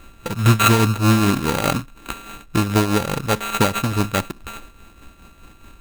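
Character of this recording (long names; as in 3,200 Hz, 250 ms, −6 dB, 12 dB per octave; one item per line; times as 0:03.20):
a buzz of ramps at a fixed pitch in blocks of 32 samples
tremolo triangle 4.8 Hz, depth 60%
aliases and images of a low sample rate 5,300 Hz, jitter 0%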